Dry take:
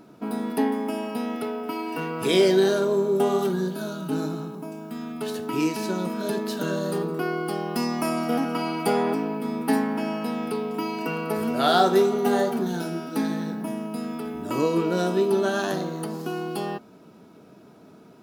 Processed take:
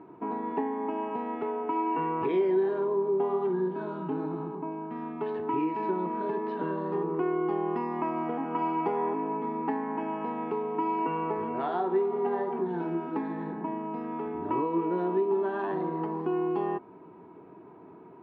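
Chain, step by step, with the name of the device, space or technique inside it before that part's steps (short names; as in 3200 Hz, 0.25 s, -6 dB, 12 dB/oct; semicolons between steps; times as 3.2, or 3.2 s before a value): bass amplifier (compressor 4:1, threshold -28 dBFS, peak gain reduction 12 dB; speaker cabinet 80–2100 Hz, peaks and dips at 140 Hz -4 dB, 220 Hz -9 dB, 360 Hz +7 dB, 580 Hz -7 dB, 970 Hz +10 dB, 1400 Hz -8 dB)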